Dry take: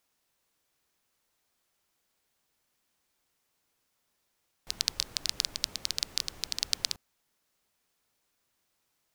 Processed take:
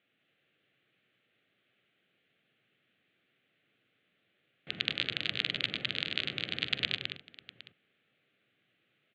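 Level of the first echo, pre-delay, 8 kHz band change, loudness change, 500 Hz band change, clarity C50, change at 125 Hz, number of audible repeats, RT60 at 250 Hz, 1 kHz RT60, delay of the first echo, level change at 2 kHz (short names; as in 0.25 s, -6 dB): -19.5 dB, none, under -25 dB, -1.0 dB, +6.5 dB, none, +7.5 dB, 5, none, none, 44 ms, +9.5 dB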